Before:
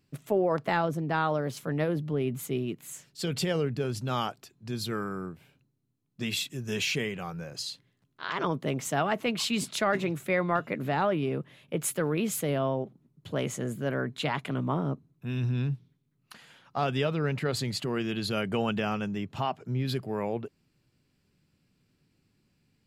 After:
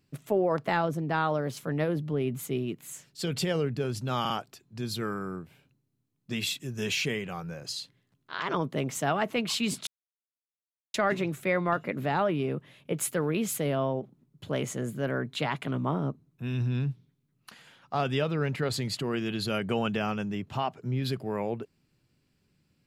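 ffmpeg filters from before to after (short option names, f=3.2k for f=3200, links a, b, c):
-filter_complex "[0:a]asplit=4[a][b][c][d];[a]atrim=end=4.252[e];[b]atrim=start=4.198:end=4.252[f];[c]atrim=start=4.198:end=9.77,asetpts=PTS-STARTPTS,afade=t=out:st=5.568:d=0.004:c=hsin,apad=pad_dur=1.07[g];[d]atrim=start=9.77,asetpts=PTS-STARTPTS,afade=t=in:d=0.004:c=hsin[h];[e][f]acrossfade=d=0.004:c1=hsin:c2=hsin[i];[g][h]concat=n=2:v=0:a=1[j];[i][j]acrossfade=d=0.004:c1=hsin:c2=hsin"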